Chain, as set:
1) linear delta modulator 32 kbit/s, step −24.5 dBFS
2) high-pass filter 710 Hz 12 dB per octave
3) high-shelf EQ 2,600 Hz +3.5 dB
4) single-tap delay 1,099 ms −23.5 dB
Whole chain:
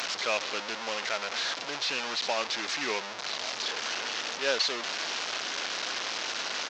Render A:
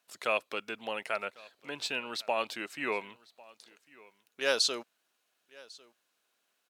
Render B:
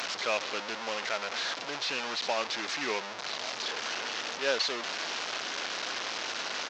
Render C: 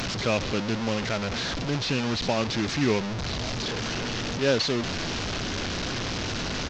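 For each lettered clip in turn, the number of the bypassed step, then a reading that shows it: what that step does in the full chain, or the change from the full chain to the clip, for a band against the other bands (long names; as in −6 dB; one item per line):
1, 4 kHz band −4.0 dB
3, 8 kHz band −2.5 dB
2, 125 Hz band +28.0 dB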